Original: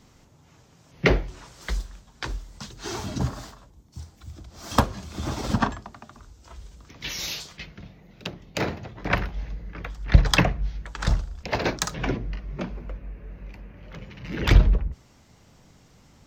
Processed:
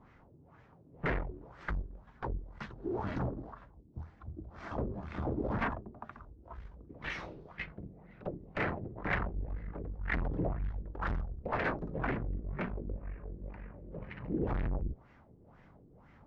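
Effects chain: tube stage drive 31 dB, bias 0.8; LFO low-pass sine 2 Hz 340–2000 Hz

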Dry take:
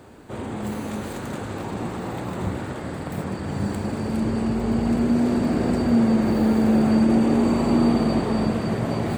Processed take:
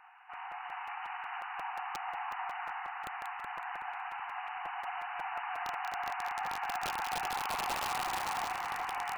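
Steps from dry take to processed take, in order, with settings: FFT band-pass 700–3000 Hz; wrapped overs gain 25.5 dB; split-band echo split 1900 Hz, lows 0.375 s, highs 0.186 s, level -5 dB; crackling interface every 0.18 s, samples 256, repeat, from 0.33; gain -3 dB

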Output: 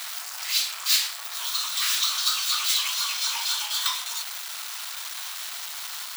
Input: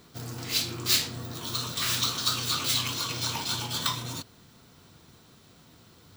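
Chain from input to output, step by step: zero-crossing step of -27 dBFS; Bessel high-pass 1300 Hz, order 8; gain +1 dB

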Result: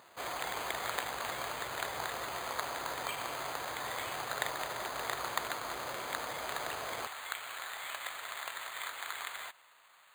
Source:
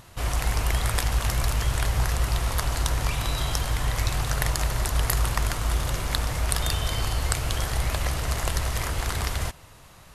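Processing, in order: HPF 440 Hz 12 dB/oct, from 7.07 s 1200 Hz; careless resampling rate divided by 8×, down filtered, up hold; gain -3.5 dB

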